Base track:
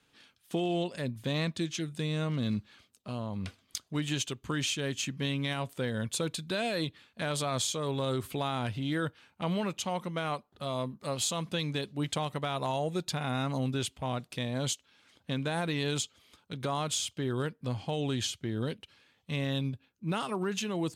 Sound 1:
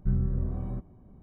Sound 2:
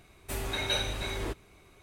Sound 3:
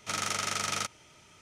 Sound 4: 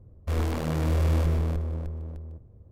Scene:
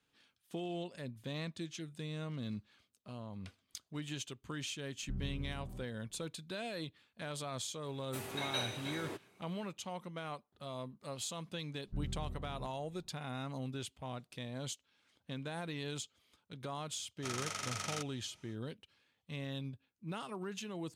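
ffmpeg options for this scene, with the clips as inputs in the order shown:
-filter_complex "[1:a]asplit=2[a][b];[0:a]volume=-10dB[c];[2:a]highpass=f=130:w=0.5412,highpass=f=130:w=1.3066[d];[a]atrim=end=1.22,asetpts=PTS-STARTPTS,volume=-14dB,afade=t=in:d=0.004:c=hsin,afade=t=out:st=1.216:d=0.004:c=hsin,adelay=5030[e];[d]atrim=end=1.82,asetpts=PTS-STARTPTS,volume=-7.5dB,afade=t=in:d=0.004:c=hsin,afade=t=out:st=1.816:d=0.004:c=hsin,adelay=7840[f];[b]atrim=end=1.22,asetpts=PTS-STARTPTS,volume=-14dB,afade=t=in:d=0.004:c=hsin,afade=t=out:st=1.216:d=0.004:c=hsin,adelay=11870[g];[3:a]atrim=end=1.41,asetpts=PTS-STARTPTS,volume=-9dB,afade=t=in:d=0.05,afade=t=out:st=1.36:d=0.05,adelay=756756S[h];[c][e][f][g][h]amix=inputs=5:normalize=0"

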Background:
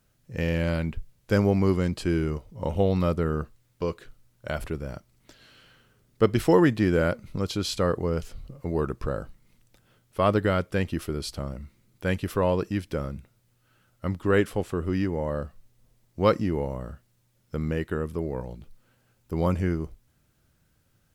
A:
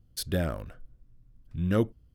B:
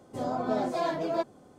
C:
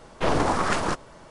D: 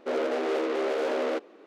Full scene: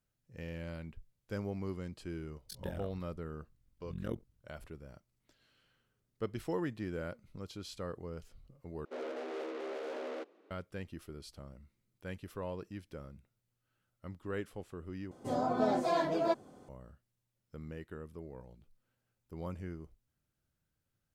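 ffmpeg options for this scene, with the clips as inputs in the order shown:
-filter_complex "[0:a]volume=-17dB[a];[1:a]tremolo=f=44:d=0.947[b];[a]asplit=3[c][d][e];[c]atrim=end=8.854[f];[4:a]atrim=end=1.66,asetpts=PTS-STARTPTS,volume=-13dB[g];[d]atrim=start=10.506:end=15.114[h];[2:a]atrim=end=1.58,asetpts=PTS-STARTPTS,volume=-1.5dB[i];[e]atrim=start=16.686[j];[b]atrim=end=2.14,asetpts=PTS-STARTPTS,volume=-10.5dB,afade=t=in:d=0.004:c=hsin,afade=t=out:st=2.136:d=0.004:c=hsin,adelay=2320[k];[f][g]acrossfade=d=0.004:c1=hsin:c2=hsin[l];[l][h]acrossfade=d=0.004:c1=hsin:c2=hsin[m];[m][i]acrossfade=d=0.004:c1=hsin:c2=hsin[n];[n][j]acrossfade=d=0.004:c1=hsin:c2=hsin[o];[o][k]amix=inputs=2:normalize=0"

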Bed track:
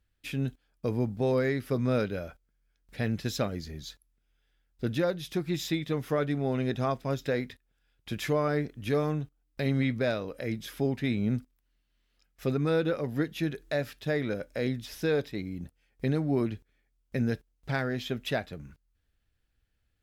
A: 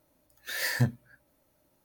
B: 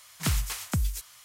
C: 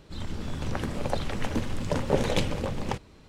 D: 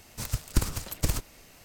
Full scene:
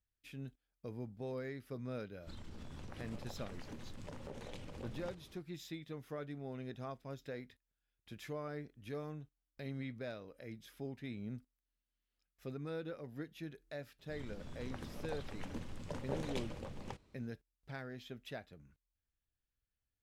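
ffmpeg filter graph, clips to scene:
-filter_complex "[3:a]asplit=2[a][b];[0:a]volume=-16dB[c];[a]acompressor=threshold=-36dB:ratio=6:attack=3.2:release=140:knee=1:detection=peak,atrim=end=3.28,asetpts=PTS-STARTPTS,volume=-8.5dB,afade=t=in:d=0.1,afade=t=out:st=3.18:d=0.1,adelay=2170[d];[b]atrim=end=3.28,asetpts=PTS-STARTPTS,volume=-16dB,afade=t=in:d=0.004:c=hsin,afade=t=out:st=3.276:d=0.004:c=hsin,adelay=13990[e];[c][d][e]amix=inputs=3:normalize=0"

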